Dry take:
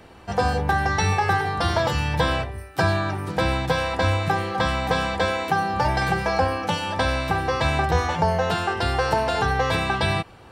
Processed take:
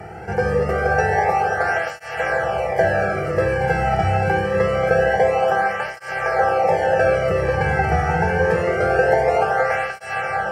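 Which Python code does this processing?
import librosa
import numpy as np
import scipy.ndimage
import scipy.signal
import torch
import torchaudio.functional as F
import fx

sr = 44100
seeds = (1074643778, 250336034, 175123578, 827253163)

y = fx.bin_compress(x, sr, power=0.6)
y = fx.highpass(y, sr, hz=240.0, slope=6)
y = fx.tilt_eq(y, sr, slope=-3.0)
y = fx.fixed_phaser(y, sr, hz=1000.0, stages=6)
y = fx.echo_thinned(y, sr, ms=229, feedback_pct=66, hz=420.0, wet_db=-6.5)
y = fx.rev_freeverb(y, sr, rt60_s=4.1, hf_ratio=0.8, predelay_ms=35, drr_db=2.5)
y = fx.flanger_cancel(y, sr, hz=0.25, depth_ms=1.9)
y = y * librosa.db_to_amplitude(4.0)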